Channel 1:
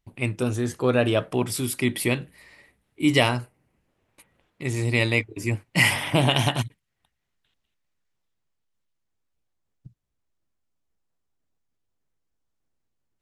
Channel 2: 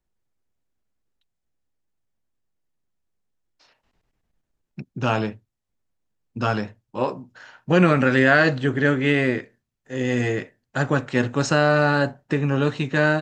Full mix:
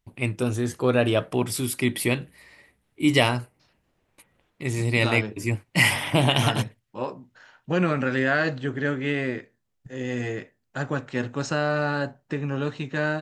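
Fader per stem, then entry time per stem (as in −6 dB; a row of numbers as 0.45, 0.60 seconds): 0.0, −6.5 decibels; 0.00, 0.00 seconds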